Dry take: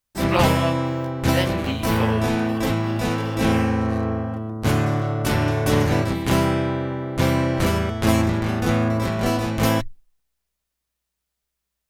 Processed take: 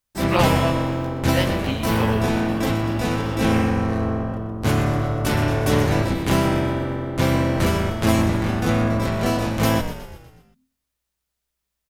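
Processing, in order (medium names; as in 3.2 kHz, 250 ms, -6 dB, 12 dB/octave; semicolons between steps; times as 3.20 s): frequency-shifting echo 122 ms, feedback 53%, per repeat -45 Hz, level -11 dB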